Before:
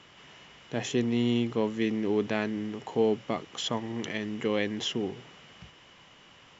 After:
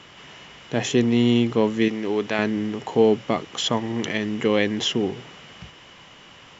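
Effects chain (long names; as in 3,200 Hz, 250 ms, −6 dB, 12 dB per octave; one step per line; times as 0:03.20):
0:01.88–0:02.39: low-shelf EQ 360 Hz −10 dB
level +8 dB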